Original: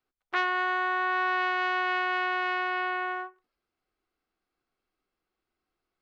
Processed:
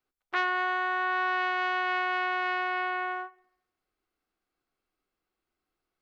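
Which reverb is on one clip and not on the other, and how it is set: FDN reverb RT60 0.81 s, low-frequency decay 0.8×, high-frequency decay 0.85×, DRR 19.5 dB; trim -1 dB

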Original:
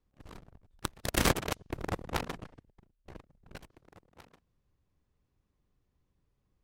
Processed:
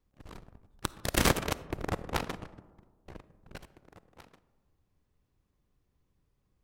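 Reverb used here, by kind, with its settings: algorithmic reverb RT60 1.6 s, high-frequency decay 0.3×, pre-delay 10 ms, DRR 16.5 dB; trim +1.5 dB

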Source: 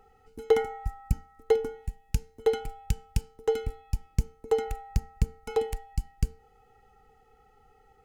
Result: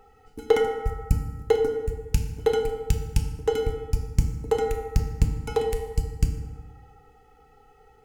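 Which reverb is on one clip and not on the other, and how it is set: FDN reverb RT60 1.4 s, low-frequency decay 1×, high-frequency decay 0.55×, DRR 4 dB; trim +4 dB

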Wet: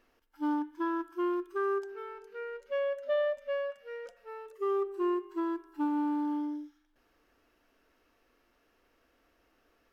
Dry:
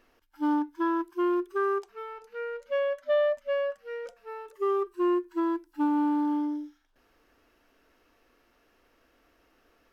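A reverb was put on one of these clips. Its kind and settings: spring tank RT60 1.7 s, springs 43 ms, chirp 75 ms, DRR 15 dB; trim -4.5 dB

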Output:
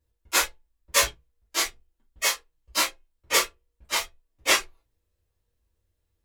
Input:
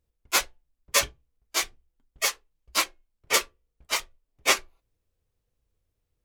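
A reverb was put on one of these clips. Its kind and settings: gated-style reverb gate 80 ms falling, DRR -6 dB; trim -5 dB

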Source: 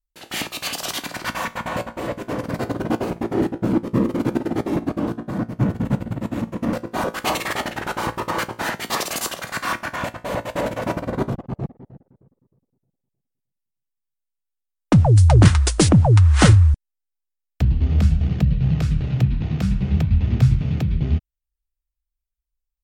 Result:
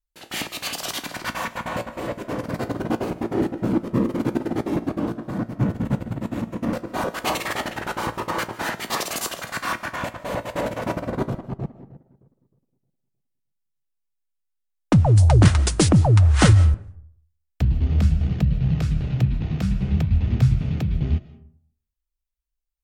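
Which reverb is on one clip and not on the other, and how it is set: algorithmic reverb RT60 0.6 s, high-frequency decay 0.5×, pre-delay 110 ms, DRR 16.5 dB; trim -2 dB

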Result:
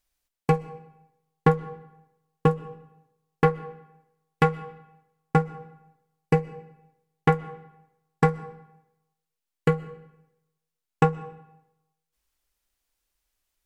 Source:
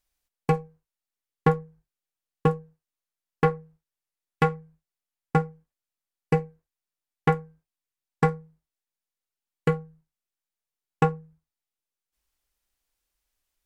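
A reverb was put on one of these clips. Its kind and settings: algorithmic reverb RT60 0.91 s, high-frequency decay 0.8×, pre-delay 85 ms, DRR 18.5 dB; trim +1.5 dB

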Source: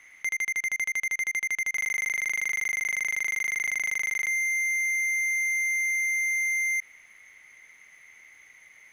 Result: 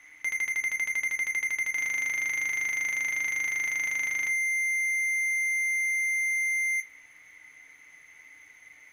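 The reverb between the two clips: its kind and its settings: FDN reverb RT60 0.38 s, low-frequency decay 1.55×, high-frequency decay 0.5×, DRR 1.5 dB; trim -2 dB

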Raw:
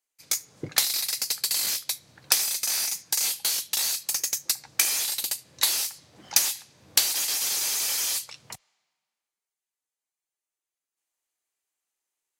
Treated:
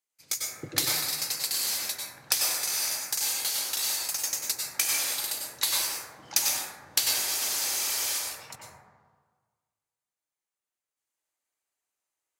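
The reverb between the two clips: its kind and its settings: plate-style reverb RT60 1.5 s, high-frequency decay 0.25×, pre-delay 85 ms, DRR -3.5 dB; trim -4.5 dB

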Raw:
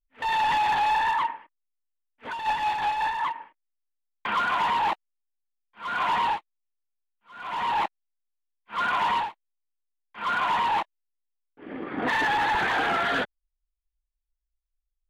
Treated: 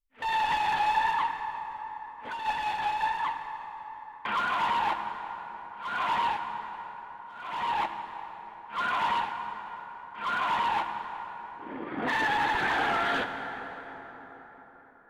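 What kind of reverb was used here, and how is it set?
plate-style reverb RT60 4.9 s, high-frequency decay 0.5×, DRR 6 dB; trim -3.5 dB

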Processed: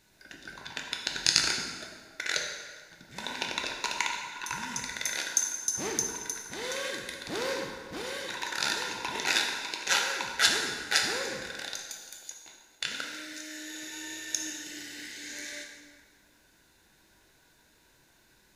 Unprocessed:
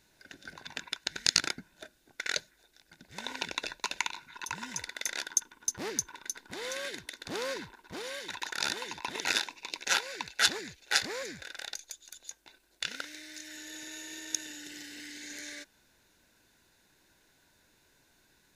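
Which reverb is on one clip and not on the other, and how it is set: plate-style reverb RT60 1.6 s, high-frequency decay 0.75×, DRR 0.5 dB; trim +1 dB

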